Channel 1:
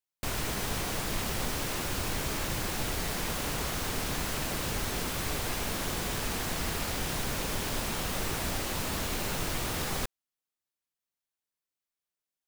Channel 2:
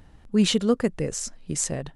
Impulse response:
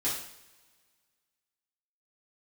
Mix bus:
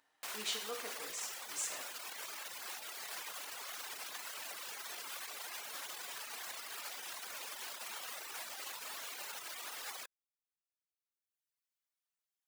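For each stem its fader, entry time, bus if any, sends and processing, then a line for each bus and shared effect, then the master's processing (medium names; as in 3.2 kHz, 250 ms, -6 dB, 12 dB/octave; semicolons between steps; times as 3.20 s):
+0.5 dB, 0.00 s, no send, peak limiter -30.5 dBFS, peak gain reduction 11 dB; reverb removal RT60 1.5 s
-16.5 dB, 0.00 s, send -5.5 dB, none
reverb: on, pre-delay 3 ms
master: high-pass 850 Hz 12 dB/octave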